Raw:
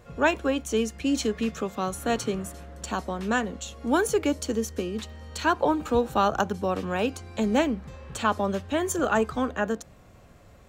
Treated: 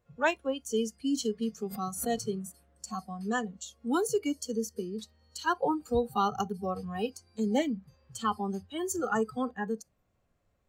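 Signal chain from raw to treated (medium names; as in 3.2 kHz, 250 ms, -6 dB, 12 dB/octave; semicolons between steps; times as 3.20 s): spectral noise reduction 19 dB; 1.66–2.27 s: swell ahead of each attack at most 82 dB/s; trim -4 dB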